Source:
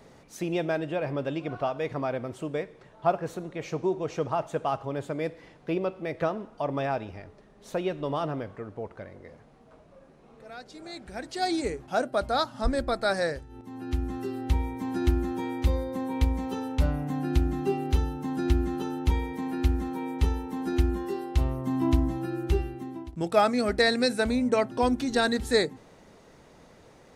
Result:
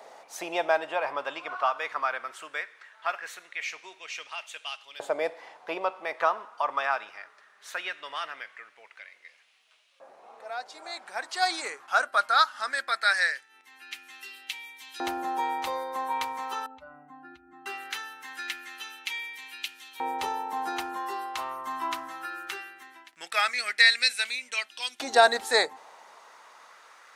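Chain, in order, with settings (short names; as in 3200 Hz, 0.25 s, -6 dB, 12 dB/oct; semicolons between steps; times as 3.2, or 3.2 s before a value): 16.66–17.66 spectral contrast raised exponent 1.8; LFO high-pass saw up 0.2 Hz 690–3100 Hz; gain +4 dB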